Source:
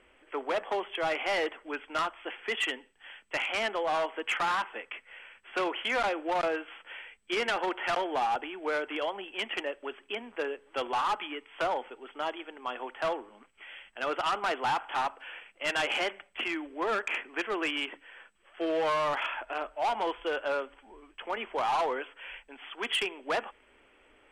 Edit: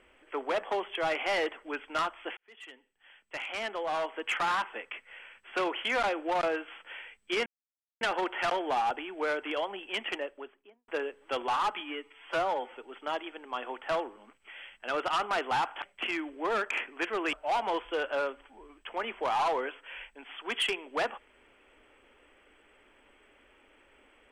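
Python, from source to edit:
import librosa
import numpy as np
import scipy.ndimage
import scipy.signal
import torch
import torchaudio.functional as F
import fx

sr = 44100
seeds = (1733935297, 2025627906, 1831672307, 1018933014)

y = fx.studio_fade_out(x, sr, start_s=9.5, length_s=0.83)
y = fx.edit(y, sr, fx.fade_in_span(start_s=2.37, length_s=2.14),
    fx.insert_silence(at_s=7.46, length_s=0.55),
    fx.stretch_span(start_s=11.25, length_s=0.64, factor=1.5),
    fx.cut(start_s=14.95, length_s=1.24),
    fx.cut(start_s=17.7, length_s=1.96), tone=tone)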